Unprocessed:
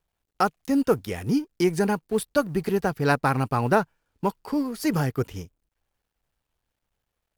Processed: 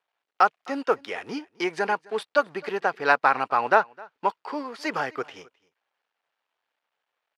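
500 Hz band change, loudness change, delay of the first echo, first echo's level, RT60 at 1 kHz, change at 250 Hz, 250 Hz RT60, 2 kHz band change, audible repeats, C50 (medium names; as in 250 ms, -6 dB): -1.5 dB, -0.5 dB, 260 ms, -24.0 dB, no reverb, -10.5 dB, no reverb, +5.0 dB, 1, no reverb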